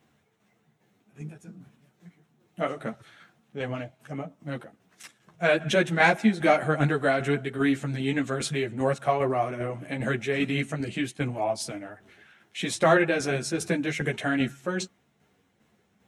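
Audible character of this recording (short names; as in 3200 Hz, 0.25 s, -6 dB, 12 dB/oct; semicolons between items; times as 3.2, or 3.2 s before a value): tremolo saw down 2.5 Hz, depth 50%; a shimmering, thickened sound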